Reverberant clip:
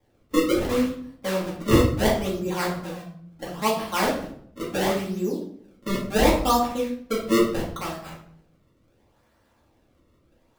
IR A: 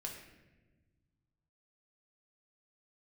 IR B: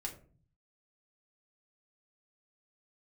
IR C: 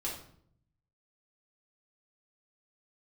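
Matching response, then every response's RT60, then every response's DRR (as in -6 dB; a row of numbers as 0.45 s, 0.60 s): C; 1.2 s, 0.40 s, 0.60 s; -0.5 dB, -0.5 dB, -5.5 dB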